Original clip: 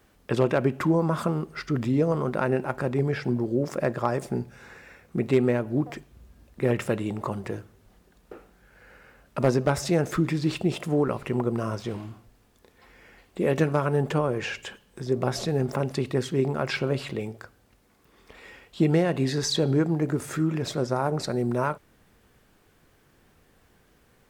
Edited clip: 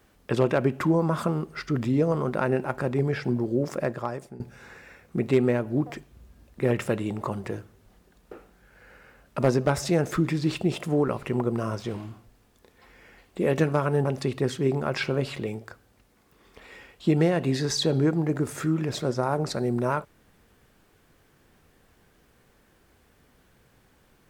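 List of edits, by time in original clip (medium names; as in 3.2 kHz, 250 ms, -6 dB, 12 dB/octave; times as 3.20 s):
3.70–4.40 s: fade out, to -18 dB
14.05–15.78 s: delete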